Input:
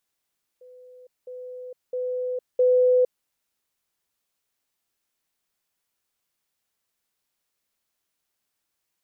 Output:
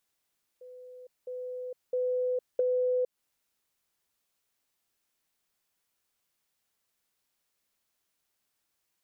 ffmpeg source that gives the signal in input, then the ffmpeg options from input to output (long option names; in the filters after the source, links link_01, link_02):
-f lavfi -i "aevalsrc='pow(10,(-45+10*floor(t/0.66))/20)*sin(2*PI*502*t)*clip(min(mod(t,0.66),0.46-mod(t,0.66))/0.005,0,1)':duration=2.64:sample_rate=44100"
-af "acompressor=threshold=-26dB:ratio=10"